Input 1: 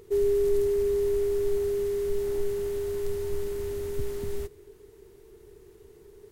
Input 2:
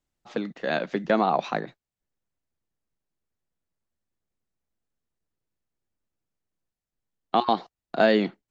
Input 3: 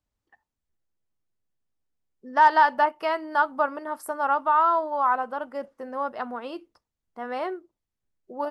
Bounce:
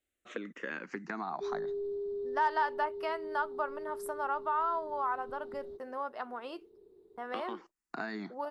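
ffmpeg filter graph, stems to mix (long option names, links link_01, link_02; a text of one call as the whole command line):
ffmpeg -i stem1.wav -i stem2.wav -i stem3.wav -filter_complex "[0:a]firequalizer=gain_entry='entry(110,0);entry(230,12);entry(2300,-27);entry(3800,-1);entry(6600,-27)':delay=0.05:min_phase=1,adelay=1300,volume=-13dB[link_01];[1:a]acompressor=threshold=-29dB:ratio=2.5,asplit=2[link_02][link_03];[link_03]afreqshift=-0.29[link_04];[link_02][link_04]amix=inputs=2:normalize=1,volume=2.5dB[link_05];[2:a]agate=range=-24dB:threshold=-49dB:ratio=16:detection=peak,volume=-2dB[link_06];[link_01][link_05][link_06]amix=inputs=3:normalize=0,lowshelf=frequency=240:gain=-10.5,acompressor=threshold=-43dB:ratio=1.5" out.wav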